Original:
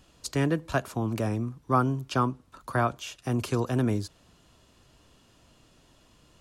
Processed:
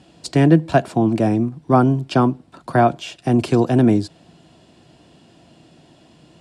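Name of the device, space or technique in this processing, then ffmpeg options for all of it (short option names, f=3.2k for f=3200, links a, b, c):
car door speaker: -filter_complex "[0:a]asplit=3[a][b][c];[a]afade=t=out:st=1.08:d=0.02[d];[b]agate=range=-33dB:threshold=-27dB:ratio=3:detection=peak,afade=t=in:st=1.08:d=0.02,afade=t=out:st=1.51:d=0.02[e];[c]afade=t=in:st=1.51:d=0.02[f];[d][e][f]amix=inputs=3:normalize=0,highpass=91,equalizer=f=160:t=q:w=4:g=9,equalizer=f=230:t=q:w=4:g=4,equalizer=f=330:t=q:w=4:g=8,equalizer=f=710:t=q:w=4:g=8,equalizer=f=1.2k:t=q:w=4:g=-7,equalizer=f=6.4k:t=q:w=4:g=-8,lowpass=f=9k:w=0.5412,lowpass=f=9k:w=1.3066,volume=7.5dB"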